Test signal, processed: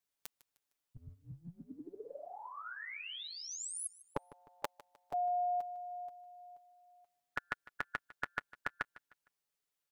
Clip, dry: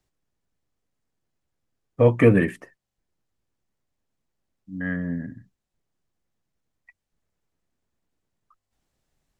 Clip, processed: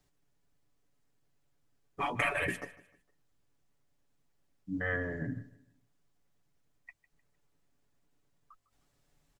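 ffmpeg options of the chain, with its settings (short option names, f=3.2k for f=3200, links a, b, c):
-filter_complex "[0:a]afftfilt=real='re*lt(hypot(re,im),0.178)':imag='im*lt(hypot(re,im),0.178)':win_size=1024:overlap=0.75,aecho=1:1:7:0.5,asplit=2[a][b];[b]aecho=0:1:153|306|459:0.112|0.0415|0.0154[c];[a][c]amix=inputs=2:normalize=0,volume=1.5dB"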